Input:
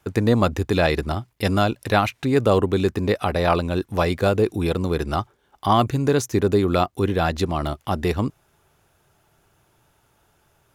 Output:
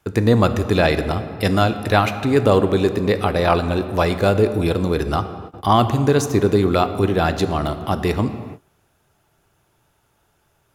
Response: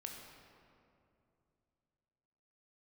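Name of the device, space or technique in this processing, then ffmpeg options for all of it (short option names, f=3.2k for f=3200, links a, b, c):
keyed gated reverb: -filter_complex "[0:a]asplit=3[a][b][c];[1:a]atrim=start_sample=2205[d];[b][d]afir=irnorm=-1:irlink=0[e];[c]apad=whole_len=474027[f];[e][f]sidechaingate=range=-33dB:threshold=-56dB:ratio=16:detection=peak,volume=0.5dB[g];[a][g]amix=inputs=2:normalize=0,volume=-1.5dB"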